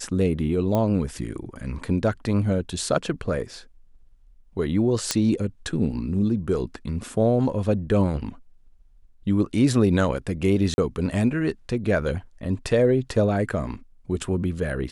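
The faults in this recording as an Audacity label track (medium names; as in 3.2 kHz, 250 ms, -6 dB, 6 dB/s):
0.750000	0.750000	pop -12 dBFS
5.110000	5.110000	pop -6 dBFS
10.740000	10.780000	dropout 41 ms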